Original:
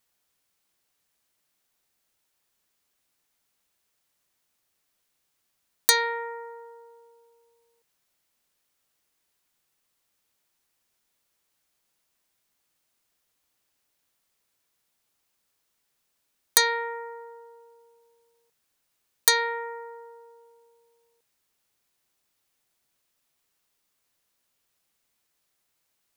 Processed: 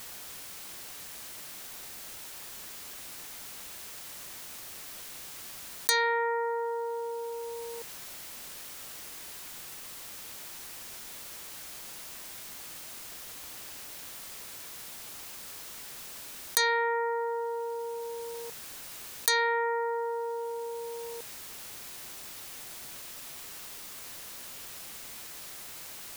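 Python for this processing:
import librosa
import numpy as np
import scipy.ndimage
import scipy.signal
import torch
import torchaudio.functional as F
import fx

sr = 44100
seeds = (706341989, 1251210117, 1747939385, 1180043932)

y = fx.env_flatten(x, sr, amount_pct=70)
y = y * 10.0 ** (-8.0 / 20.0)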